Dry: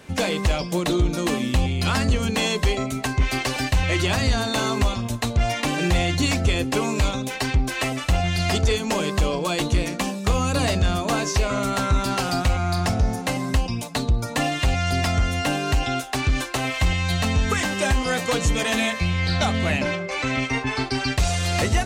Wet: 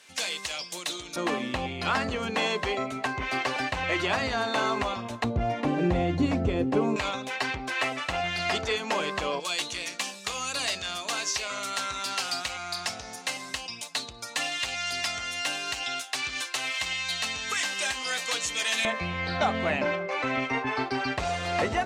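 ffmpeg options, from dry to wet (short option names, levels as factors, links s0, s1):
-af "asetnsamples=n=441:p=0,asendcmd='1.16 bandpass f 1100;5.24 bandpass f 350;6.96 bandpass f 1500;9.4 bandpass f 4500;18.85 bandpass f 850',bandpass=f=5900:t=q:w=0.57:csg=0"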